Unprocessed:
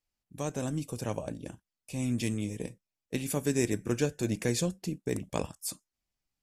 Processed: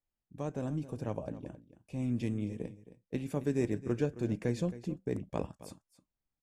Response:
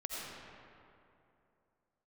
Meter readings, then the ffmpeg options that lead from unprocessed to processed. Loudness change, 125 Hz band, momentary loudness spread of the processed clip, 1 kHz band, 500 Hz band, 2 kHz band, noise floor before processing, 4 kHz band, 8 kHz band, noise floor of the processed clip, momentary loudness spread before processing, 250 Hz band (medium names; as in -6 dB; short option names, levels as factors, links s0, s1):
-3.0 dB, -2.0 dB, 12 LU, -4.0 dB, -2.5 dB, -8.0 dB, under -85 dBFS, -13.0 dB, -18.0 dB, under -85 dBFS, 11 LU, -2.0 dB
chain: -filter_complex "[0:a]lowpass=f=1100:p=1,asplit=2[s0][s1];[s1]aecho=0:1:268:0.168[s2];[s0][s2]amix=inputs=2:normalize=0,volume=0.794"